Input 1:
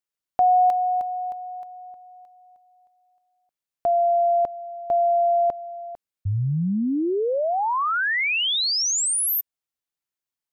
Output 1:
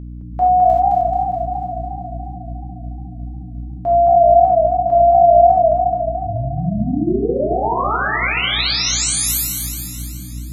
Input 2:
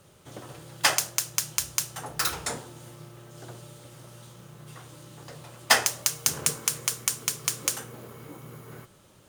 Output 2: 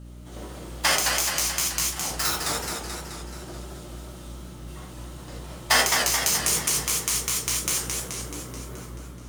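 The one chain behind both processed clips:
reverb whose tail is shaped and stops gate 110 ms flat, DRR −4 dB
mains hum 60 Hz, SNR 12 dB
feedback echo with a swinging delay time 215 ms, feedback 62%, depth 155 cents, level −4.5 dB
level −3.5 dB

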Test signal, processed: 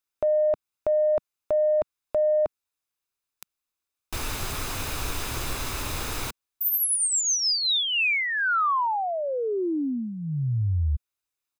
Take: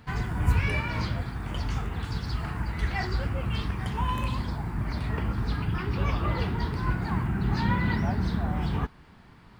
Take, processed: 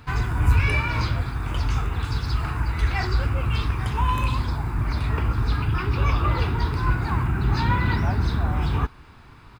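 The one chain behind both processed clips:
parametric band 190 Hz −11.5 dB 0.55 octaves
comb filter 0.8 ms, depth 31%
soft clipping −14 dBFS
level +5.5 dB

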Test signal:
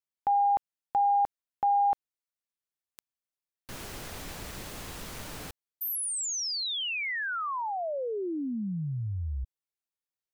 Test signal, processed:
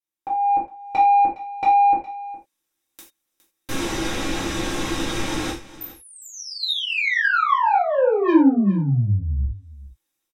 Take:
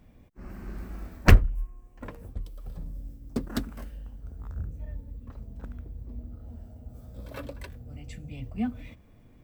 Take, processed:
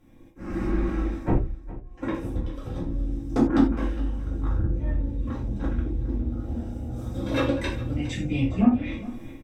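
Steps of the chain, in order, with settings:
notch filter 4,400 Hz, Q 10
treble cut that deepens with the level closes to 510 Hz, closed at −26 dBFS
high-shelf EQ 9,200 Hz +4.5 dB
comb filter 3.7 ms, depth 37%
automatic gain control gain up to 14.5 dB
hollow resonant body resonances 350/3,700 Hz, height 16 dB, ringing for 95 ms
soft clipping −12.5 dBFS
on a send: single-tap delay 412 ms −17.5 dB
on the sum: reverb whose tail is shaped and stops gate 120 ms falling, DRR −6 dB
level −6.5 dB

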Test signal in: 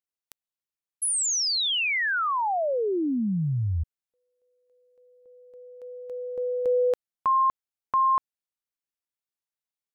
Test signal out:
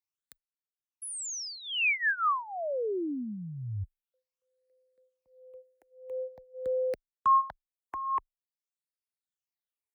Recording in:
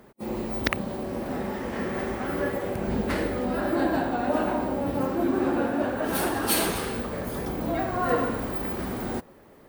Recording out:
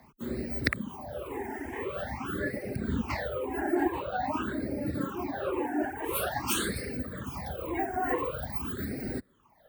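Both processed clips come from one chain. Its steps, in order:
all-pass phaser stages 8, 0.47 Hz, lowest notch 150–1,000 Hz
frequency shifter +17 Hz
reverb reduction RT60 1.2 s

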